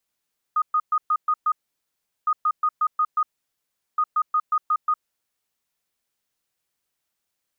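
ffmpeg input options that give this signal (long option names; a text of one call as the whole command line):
ffmpeg -f lavfi -i "aevalsrc='0.141*sin(2*PI*1240*t)*clip(min(mod(mod(t,1.71),0.18),0.06-mod(mod(t,1.71),0.18))/0.005,0,1)*lt(mod(t,1.71),1.08)':duration=5.13:sample_rate=44100" out.wav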